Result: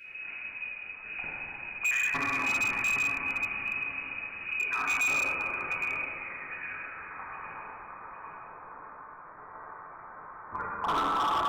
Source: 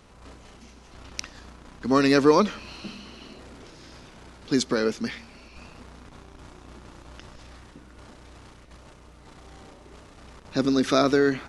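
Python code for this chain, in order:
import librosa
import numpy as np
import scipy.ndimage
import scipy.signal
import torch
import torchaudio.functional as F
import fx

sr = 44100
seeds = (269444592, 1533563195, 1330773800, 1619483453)

y = fx.spec_dropout(x, sr, seeds[0], share_pct=29)
y = fx.peak_eq(y, sr, hz=210.0, db=6.5, octaves=2.2)
y = fx.over_compress(y, sr, threshold_db=-24.0, ratio=-0.5)
y = fx.dereverb_blind(y, sr, rt60_s=1.9)
y = fx.filter_sweep_highpass(y, sr, from_hz=160.0, to_hz=1600.0, start_s=5.05, end_s=7.02, q=5.7)
y = fx.wow_flutter(y, sr, seeds[1], rate_hz=2.1, depth_cents=21.0)
y = fx.echo_feedback(y, sr, ms=810, feedback_pct=35, wet_db=-9.0)
y = fx.freq_invert(y, sr, carrier_hz=2700)
y = fx.comb_fb(y, sr, f0_hz=88.0, decay_s=0.54, harmonics='all', damping=0.0, mix_pct=40)
y = fx.rev_plate(y, sr, seeds[2], rt60_s=4.0, hf_ratio=0.35, predelay_ms=0, drr_db=-8.5)
y = np.clip(10.0 ** (17.5 / 20.0) * y, -1.0, 1.0) / 10.0 ** (17.5 / 20.0)
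y = y * librosa.db_to_amplitude(-7.0)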